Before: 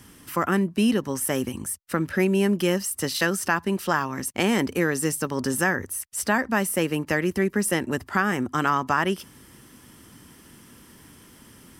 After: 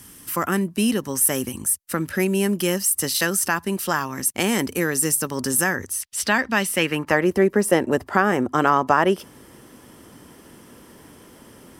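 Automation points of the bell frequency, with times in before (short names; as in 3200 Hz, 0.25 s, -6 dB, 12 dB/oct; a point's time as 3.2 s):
bell +10.5 dB 1.7 oct
5.66 s 12000 Hz
6.09 s 3500 Hz
6.71 s 3500 Hz
7.29 s 560 Hz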